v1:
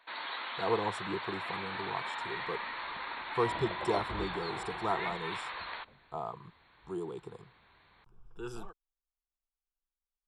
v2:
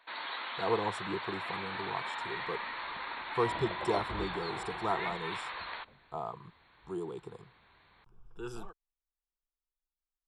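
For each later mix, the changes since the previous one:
none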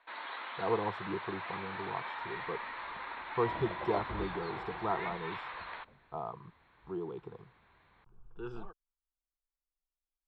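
first sound: add HPF 250 Hz 6 dB/oct; master: add air absorption 310 m

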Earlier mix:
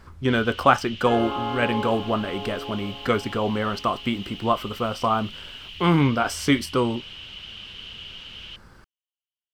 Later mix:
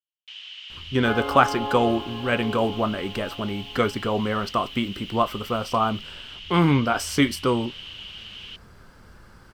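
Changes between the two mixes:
speech: entry +0.70 s; master: add high shelf 9900 Hz +3.5 dB

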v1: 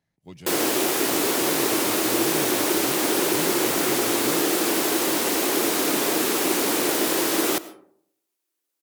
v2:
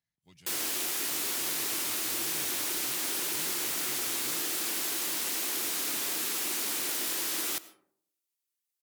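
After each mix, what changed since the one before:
master: add passive tone stack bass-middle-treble 5-5-5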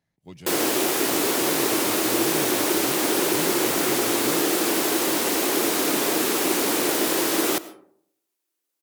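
master: remove passive tone stack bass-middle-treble 5-5-5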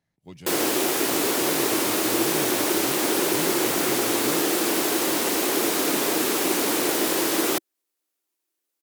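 reverb: off

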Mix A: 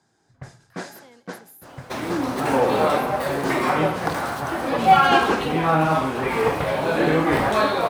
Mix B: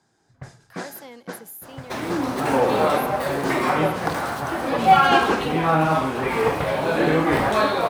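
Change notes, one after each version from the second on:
speech +8.5 dB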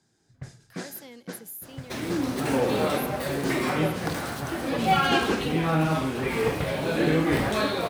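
master: add bell 930 Hz -10 dB 1.8 oct

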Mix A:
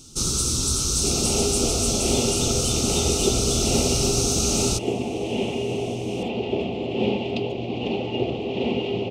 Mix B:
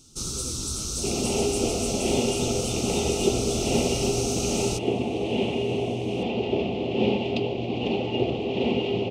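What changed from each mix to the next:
speech: add tilt -4.5 dB/oct; first sound -7.5 dB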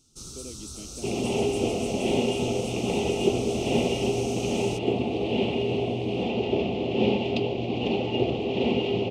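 first sound -10.0 dB

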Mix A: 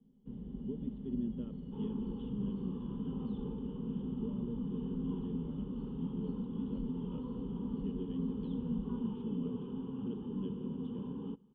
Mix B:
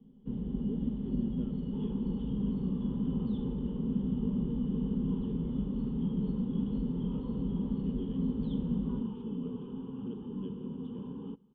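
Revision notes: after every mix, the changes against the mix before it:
first sound +9.0 dB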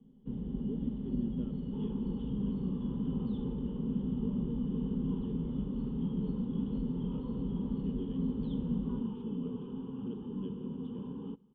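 first sound: send -11.0 dB

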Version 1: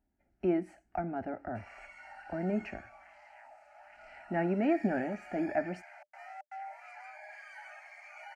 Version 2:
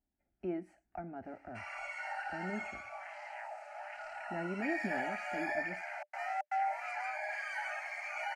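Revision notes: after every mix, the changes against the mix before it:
speech -8.5 dB; background +10.0 dB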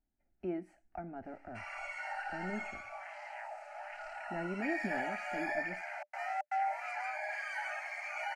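master: remove HPF 42 Hz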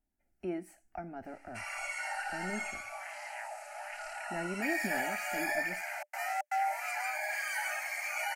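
master: remove tape spacing loss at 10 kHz 22 dB

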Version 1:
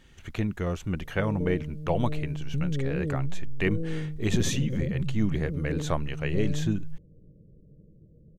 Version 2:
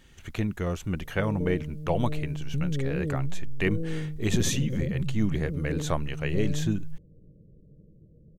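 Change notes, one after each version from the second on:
master: add high shelf 7700 Hz +7 dB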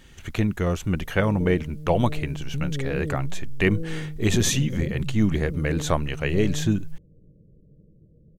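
speech +5.5 dB

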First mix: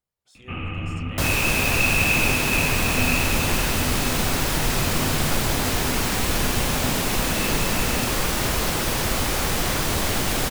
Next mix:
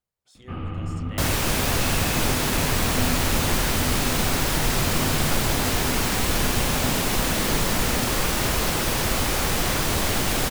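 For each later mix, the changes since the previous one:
first sound: remove synth low-pass 2600 Hz, resonance Q 7.5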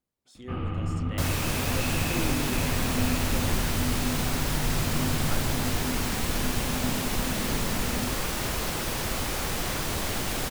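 speech: add bell 270 Hz +13.5 dB 0.78 oct; second sound -6.5 dB

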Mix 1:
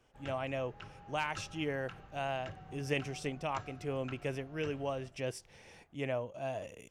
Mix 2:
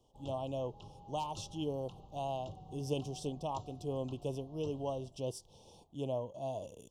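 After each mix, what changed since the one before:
master: add elliptic band-stop 990–3200 Hz, stop band 60 dB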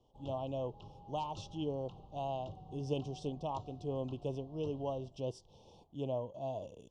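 master: add air absorption 120 m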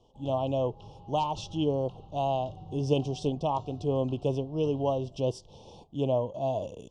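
speech +10.0 dB; background: send +10.5 dB

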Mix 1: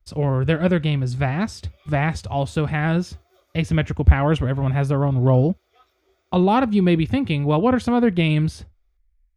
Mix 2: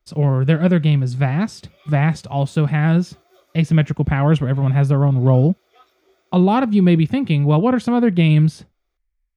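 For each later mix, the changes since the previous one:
background +5.0 dB; master: add resonant low shelf 110 Hz -9 dB, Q 3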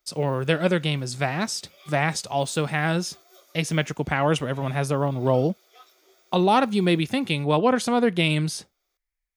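master: add tone controls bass -14 dB, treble +11 dB

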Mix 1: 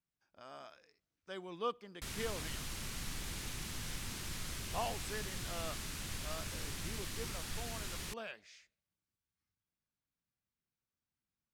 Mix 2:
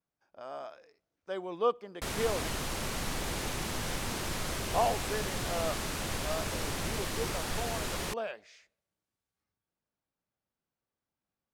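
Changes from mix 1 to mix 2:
background +5.5 dB; master: add bell 610 Hz +12 dB 2.1 oct

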